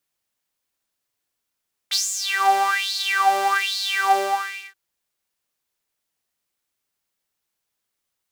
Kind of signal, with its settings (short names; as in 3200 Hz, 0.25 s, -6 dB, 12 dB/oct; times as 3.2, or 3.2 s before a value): synth patch with filter wobble G4, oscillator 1 saw, filter highpass, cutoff 820 Hz, Q 7.6, filter envelope 2 oct, filter decay 0.76 s, filter sustain 50%, attack 22 ms, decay 0.29 s, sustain -6.5 dB, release 0.60 s, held 2.23 s, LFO 1.2 Hz, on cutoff 1.4 oct